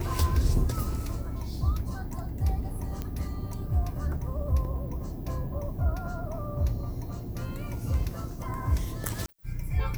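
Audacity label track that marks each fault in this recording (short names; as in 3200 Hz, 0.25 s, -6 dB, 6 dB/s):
3.020000	3.020000	pop -20 dBFS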